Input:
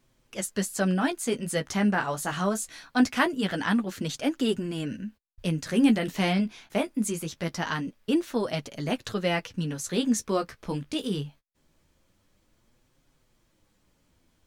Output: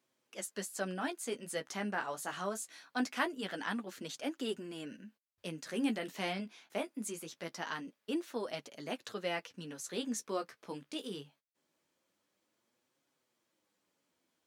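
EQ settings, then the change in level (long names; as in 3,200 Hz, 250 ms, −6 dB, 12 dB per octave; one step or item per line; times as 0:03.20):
high-pass filter 290 Hz 12 dB per octave
−9.0 dB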